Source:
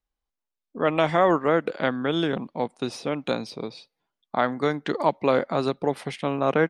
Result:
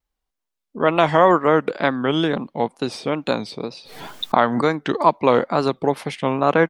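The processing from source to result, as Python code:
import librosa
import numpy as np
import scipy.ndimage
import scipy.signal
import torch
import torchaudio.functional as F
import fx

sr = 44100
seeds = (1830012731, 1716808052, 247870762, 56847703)

y = fx.dynamic_eq(x, sr, hz=990.0, q=3.7, threshold_db=-39.0, ratio=4.0, max_db=5)
y = fx.wow_flutter(y, sr, seeds[0], rate_hz=2.1, depth_cents=110.0)
y = fx.pre_swell(y, sr, db_per_s=57.0, at=(3.68, 4.6), fade=0.02)
y = y * 10.0 ** (4.5 / 20.0)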